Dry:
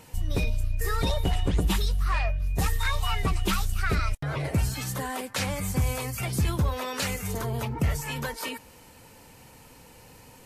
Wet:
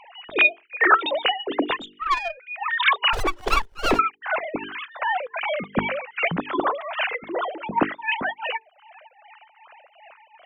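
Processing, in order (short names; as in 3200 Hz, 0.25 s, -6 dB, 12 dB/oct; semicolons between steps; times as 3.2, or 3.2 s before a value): sine-wave speech; reverb removal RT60 0.52 s; notches 50/100/150/200/250/300/350/400/450 Hz; 1.78–2.38 tube stage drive 17 dB, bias 0.55; 4.58–5.02 negative-ratio compressor -36 dBFS, ratio -1; tremolo triangle 2.6 Hz, depth 80%; 3.13–3.99 running maximum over 17 samples; gain +6.5 dB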